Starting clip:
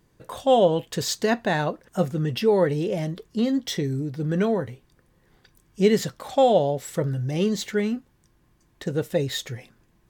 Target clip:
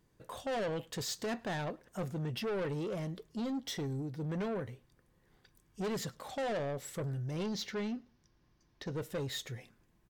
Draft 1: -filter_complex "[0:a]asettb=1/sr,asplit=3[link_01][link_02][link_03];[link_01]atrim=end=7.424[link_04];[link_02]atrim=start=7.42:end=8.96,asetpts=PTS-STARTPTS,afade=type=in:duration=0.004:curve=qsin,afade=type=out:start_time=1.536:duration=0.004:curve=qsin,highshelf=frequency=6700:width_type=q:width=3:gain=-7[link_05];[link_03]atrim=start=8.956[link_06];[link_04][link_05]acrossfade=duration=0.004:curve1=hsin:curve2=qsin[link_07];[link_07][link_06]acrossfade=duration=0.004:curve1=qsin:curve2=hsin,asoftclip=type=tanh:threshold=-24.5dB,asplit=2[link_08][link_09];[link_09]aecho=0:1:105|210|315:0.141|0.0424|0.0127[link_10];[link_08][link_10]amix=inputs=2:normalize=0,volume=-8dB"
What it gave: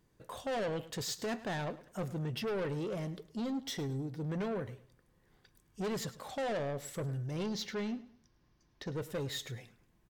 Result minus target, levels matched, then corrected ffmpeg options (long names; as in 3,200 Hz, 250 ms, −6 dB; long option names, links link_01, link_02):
echo-to-direct +10.5 dB
-filter_complex "[0:a]asettb=1/sr,asplit=3[link_01][link_02][link_03];[link_01]atrim=end=7.424[link_04];[link_02]atrim=start=7.42:end=8.96,asetpts=PTS-STARTPTS,afade=type=in:duration=0.004:curve=qsin,afade=type=out:start_time=1.536:duration=0.004:curve=qsin,highshelf=frequency=6700:width_type=q:width=3:gain=-7[link_05];[link_03]atrim=start=8.956[link_06];[link_04][link_05]acrossfade=duration=0.004:curve1=hsin:curve2=qsin[link_07];[link_07][link_06]acrossfade=duration=0.004:curve1=qsin:curve2=hsin,asoftclip=type=tanh:threshold=-24.5dB,asplit=2[link_08][link_09];[link_09]aecho=0:1:105|210:0.0422|0.0127[link_10];[link_08][link_10]amix=inputs=2:normalize=0,volume=-8dB"